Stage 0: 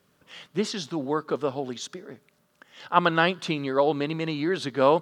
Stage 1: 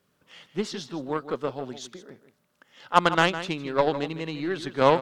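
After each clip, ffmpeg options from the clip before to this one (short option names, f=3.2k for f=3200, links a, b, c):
-filter_complex "[0:a]aeval=exprs='0.631*(cos(1*acos(clip(val(0)/0.631,-1,1)))-cos(1*PI/2))+0.0447*(cos(7*acos(clip(val(0)/0.631,-1,1)))-cos(7*PI/2))+0.00794*(cos(8*acos(clip(val(0)/0.631,-1,1)))-cos(8*PI/2))':c=same,asplit=2[a][b];[b]adelay=157.4,volume=-12dB,highshelf=f=4k:g=-3.54[c];[a][c]amix=inputs=2:normalize=0,volume=1.5dB"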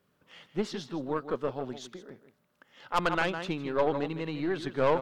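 -af "equalizer=f=7.7k:w=0.45:g=-6,aeval=exprs='(tanh(7.94*val(0)+0.35)-tanh(0.35))/7.94':c=same"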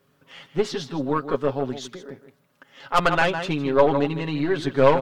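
-af "aecho=1:1:7.3:0.65,volume=6.5dB"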